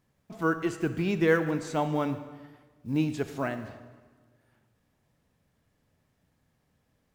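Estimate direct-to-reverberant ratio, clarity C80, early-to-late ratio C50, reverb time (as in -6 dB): 10.0 dB, 12.5 dB, 11.0 dB, 1.5 s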